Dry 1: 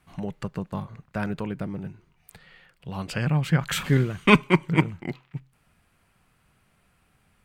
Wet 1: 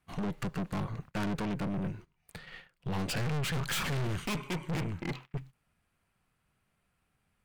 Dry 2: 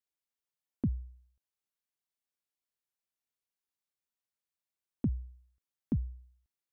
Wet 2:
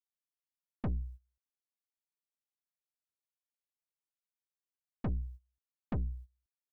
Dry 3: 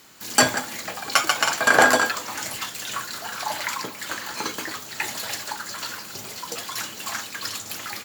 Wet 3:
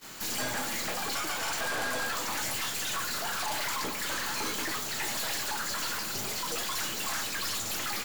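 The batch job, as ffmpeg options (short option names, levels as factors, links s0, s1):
-af "alimiter=limit=0.237:level=0:latency=1:release=266,aeval=exprs='(tanh(89.1*val(0)+0.45)-tanh(0.45))/89.1':c=same,agate=range=0.126:threshold=0.002:ratio=16:detection=peak,volume=2.51"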